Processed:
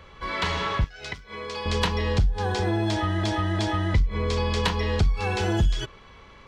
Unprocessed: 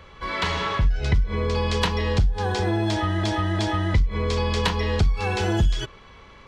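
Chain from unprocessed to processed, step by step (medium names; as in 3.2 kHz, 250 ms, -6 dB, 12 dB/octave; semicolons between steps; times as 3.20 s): 0.84–1.66 s: high-pass 1 kHz 6 dB/octave; trim -1.5 dB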